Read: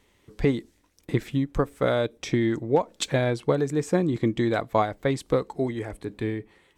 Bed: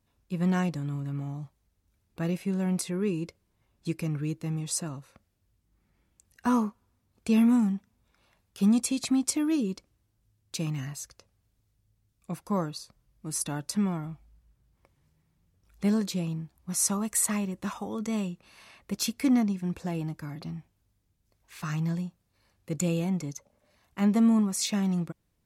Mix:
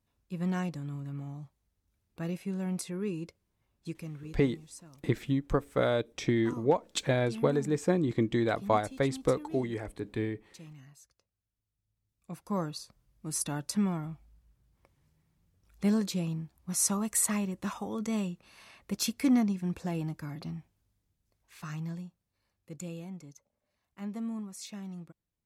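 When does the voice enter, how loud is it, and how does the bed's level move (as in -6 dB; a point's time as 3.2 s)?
3.95 s, -4.0 dB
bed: 3.74 s -5.5 dB
4.61 s -18 dB
11.49 s -18 dB
12.72 s -1.5 dB
20.49 s -1.5 dB
23.21 s -14.5 dB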